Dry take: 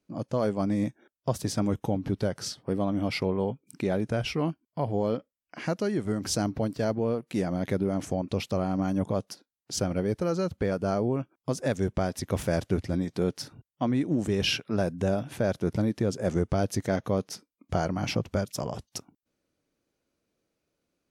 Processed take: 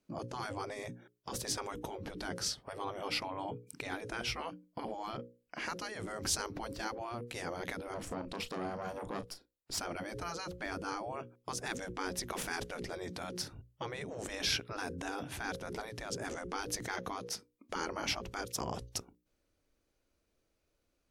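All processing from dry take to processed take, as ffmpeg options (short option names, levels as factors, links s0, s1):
-filter_complex "[0:a]asettb=1/sr,asplit=3[s0][s1][s2];[s0]atrim=end=7.944[s3];[s1]atrim=start=7.94:end=9.79,asetpts=PTS-STARTPTS,afade=t=in:d=0.004:c=qsin,afade=t=out:st=1.846:d=0.004:c=qsin,bandreject=f=6200:w=8,aeval=exprs='(tanh(17.8*val(0)+0.7)-tanh(0.7))/17.8':c=same,asplit=2[s4][s5];[s5]adelay=35,volume=0.251[s6];[s4][s6]amix=inputs=2:normalize=0,atrim=end_sample=81585[s7];[s2]atrim=start=9.786[s8];[s3][s7]acrossfade=d=0.004:c1=hsin:c2=qsin[s9];[s9][s8]acrossfade=d=0.004:c1=qsin:c2=hsin,asubboost=boost=6.5:cutoff=58,bandreject=f=60:t=h:w=6,bandreject=f=120:t=h:w=6,bandreject=f=180:t=h:w=6,bandreject=f=240:t=h:w=6,bandreject=f=300:t=h:w=6,bandreject=f=360:t=h:w=6,bandreject=f=420:t=h:w=6,bandreject=f=480:t=h:w=6,bandreject=f=540:t=h:w=6,afftfilt=real='re*lt(hypot(re,im),0.1)':imag='im*lt(hypot(re,im),0.1)':win_size=1024:overlap=0.75"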